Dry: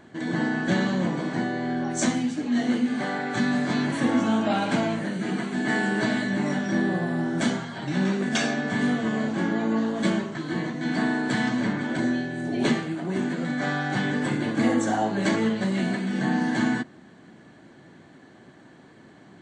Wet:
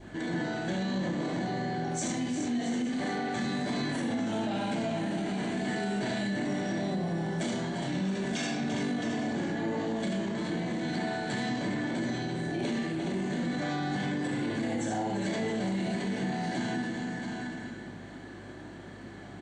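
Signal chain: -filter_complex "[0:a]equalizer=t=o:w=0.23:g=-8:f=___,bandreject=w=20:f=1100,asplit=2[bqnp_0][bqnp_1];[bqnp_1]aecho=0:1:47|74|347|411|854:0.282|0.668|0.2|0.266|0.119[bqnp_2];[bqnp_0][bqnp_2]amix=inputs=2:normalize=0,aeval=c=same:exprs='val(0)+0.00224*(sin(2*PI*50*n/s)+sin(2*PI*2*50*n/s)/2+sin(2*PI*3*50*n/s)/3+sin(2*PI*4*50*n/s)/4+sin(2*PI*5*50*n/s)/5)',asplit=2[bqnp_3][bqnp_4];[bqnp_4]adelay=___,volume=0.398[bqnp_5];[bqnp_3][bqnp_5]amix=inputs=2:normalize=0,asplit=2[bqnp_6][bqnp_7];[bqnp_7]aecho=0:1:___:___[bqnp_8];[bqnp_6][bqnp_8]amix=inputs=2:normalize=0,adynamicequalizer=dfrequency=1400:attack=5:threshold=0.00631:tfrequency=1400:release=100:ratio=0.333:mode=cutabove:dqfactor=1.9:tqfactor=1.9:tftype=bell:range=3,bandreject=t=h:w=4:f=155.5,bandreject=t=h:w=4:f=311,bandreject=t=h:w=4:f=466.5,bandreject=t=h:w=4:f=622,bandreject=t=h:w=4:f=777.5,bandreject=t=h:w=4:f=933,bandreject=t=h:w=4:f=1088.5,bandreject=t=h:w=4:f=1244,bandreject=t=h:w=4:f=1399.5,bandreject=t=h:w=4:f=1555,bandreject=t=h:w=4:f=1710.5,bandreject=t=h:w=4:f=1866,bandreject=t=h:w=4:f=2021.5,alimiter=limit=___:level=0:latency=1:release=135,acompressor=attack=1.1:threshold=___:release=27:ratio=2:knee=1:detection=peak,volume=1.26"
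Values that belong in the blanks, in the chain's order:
64, 30, 670, 0.224, 0.158, 0.0141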